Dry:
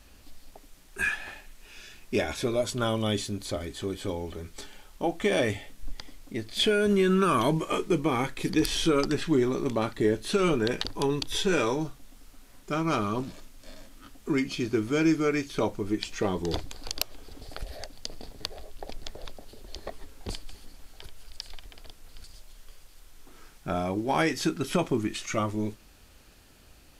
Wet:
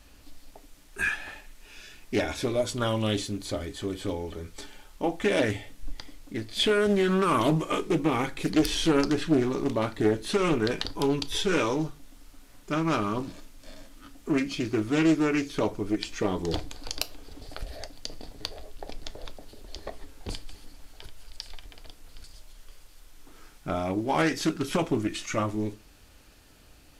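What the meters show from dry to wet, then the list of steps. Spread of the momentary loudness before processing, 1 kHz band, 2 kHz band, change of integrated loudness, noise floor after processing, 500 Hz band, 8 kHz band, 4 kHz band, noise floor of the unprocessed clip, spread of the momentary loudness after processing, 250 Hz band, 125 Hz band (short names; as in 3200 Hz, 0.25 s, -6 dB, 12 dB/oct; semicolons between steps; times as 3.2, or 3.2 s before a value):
19 LU, +0.5 dB, +0.5 dB, +0.5 dB, -54 dBFS, 0.0 dB, -0.5 dB, 0.0 dB, -54 dBFS, 19 LU, +1.0 dB, +0.5 dB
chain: FDN reverb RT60 0.32 s, low-frequency decay 1.1×, high-frequency decay 0.8×, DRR 11 dB; Doppler distortion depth 0.35 ms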